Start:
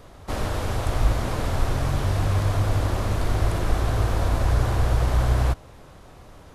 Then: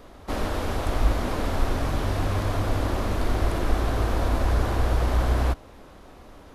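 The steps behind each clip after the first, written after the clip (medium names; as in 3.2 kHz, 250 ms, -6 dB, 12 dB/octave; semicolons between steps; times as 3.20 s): ten-band graphic EQ 125 Hz -9 dB, 250 Hz +5 dB, 8 kHz -4 dB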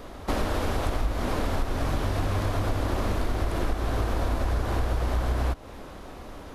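compression, threshold -28 dBFS, peak gain reduction 13.5 dB; trim +5.5 dB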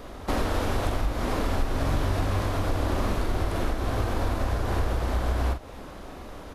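doubling 44 ms -7.5 dB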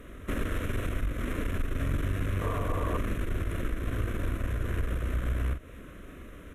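valve stage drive 20 dB, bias 0.55; painted sound noise, 2.41–2.98 s, 420–1200 Hz -27 dBFS; static phaser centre 2 kHz, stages 4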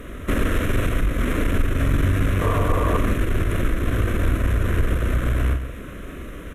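in parallel at -11.5 dB: hard clipper -29 dBFS, distortion -10 dB; on the sum: delay 139 ms -10.5 dB; trim +8.5 dB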